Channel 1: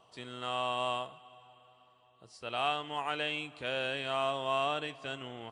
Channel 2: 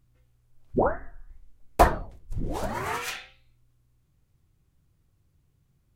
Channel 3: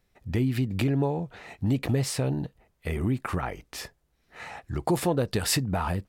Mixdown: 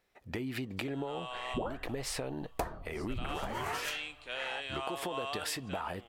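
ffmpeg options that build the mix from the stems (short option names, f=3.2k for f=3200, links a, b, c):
-filter_complex "[0:a]highpass=f=820:p=1,dynaudnorm=f=260:g=7:m=7dB,adelay=650,volume=-8.5dB[a];[1:a]adelay=800,volume=-2dB[b];[2:a]bass=f=250:g=-15,treble=f=4k:g=-5,acompressor=threshold=-32dB:ratio=6,volume=1dB[c];[a][b][c]amix=inputs=3:normalize=0,acompressor=threshold=-32dB:ratio=12"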